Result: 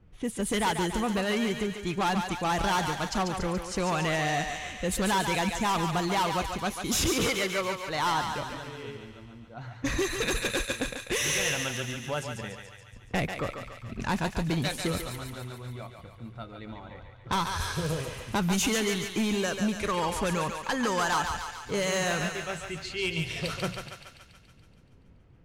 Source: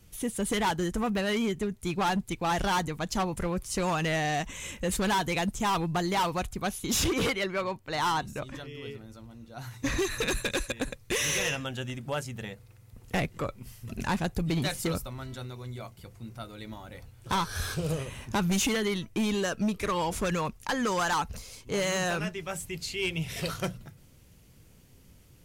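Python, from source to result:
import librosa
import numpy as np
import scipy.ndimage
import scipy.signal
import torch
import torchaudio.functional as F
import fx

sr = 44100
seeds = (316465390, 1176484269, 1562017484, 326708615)

y = fx.env_lowpass(x, sr, base_hz=1400.0, full_db=-26.5)
y = fx.echo_thinned(y, sr, ms=142, feedback_pct=64, hz=570.0, wet_db=-5)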